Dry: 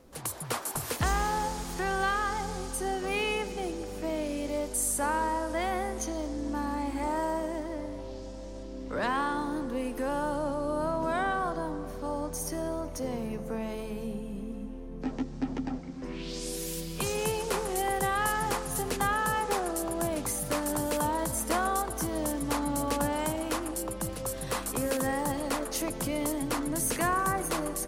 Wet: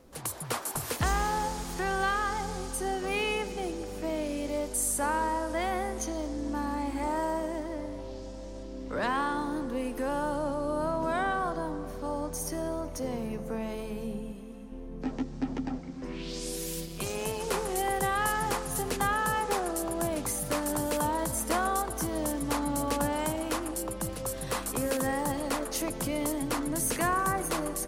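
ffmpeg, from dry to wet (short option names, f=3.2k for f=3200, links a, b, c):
-filter_complex "[0:a]asettb=1/sr,asplit=3[a][b][c];[a]atrim=end=14.324[d];[b]atrim=start=14.32:end=14.72,asetpts=PTS-STARTPTS,afade=t=in:d=0.004:c=qsin,afade=t=out:st=0.396:d=0.004:c=qsin,lowshelf=f=470:g=-8.5[e];[c]atrim=start=14.716[f];[d][e]acrossfade=d=0.004:c1=hsin:c2=qsin[g];[g][f]acrossfade=d=0.004:c1=qsin:c2=hsin,asplit=3[h][i][j];[h]afade=t=out:st=16.85:d=0.02[k];[i]tremolo=f=200:d=0.71,afade=t=in:st=16.85:d=0.02,afade=t=out:st=17.4:d=0.02[l];[j]afade=t=in:st=17.4:d=0.02[m];[k][l][m]amix=inputs=3:normalize=0"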